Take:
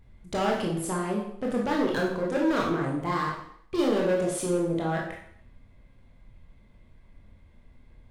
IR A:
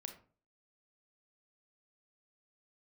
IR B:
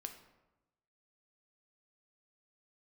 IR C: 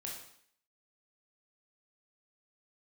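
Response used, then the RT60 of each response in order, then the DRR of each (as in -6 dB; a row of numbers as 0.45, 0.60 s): C; 0.40, 1.0, 0.60 s; 5.0, 5.5, -3.0 dB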